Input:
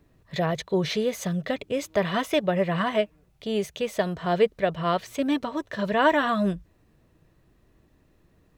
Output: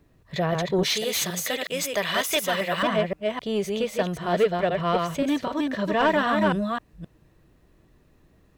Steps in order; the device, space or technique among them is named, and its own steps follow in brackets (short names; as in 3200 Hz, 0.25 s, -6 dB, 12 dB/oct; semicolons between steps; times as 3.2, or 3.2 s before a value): reverse delay 0.261 s, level -3.5 dB; 0.83–2.83 tilt +4 dB/oct; saturation between pre-emphasis and de-emphasis (high shelf 5300 Hz +11 dB; soft clip -14 dBFS, distortion -16 dB; high shelf 5300 Hz -11 dB); gain +1 dB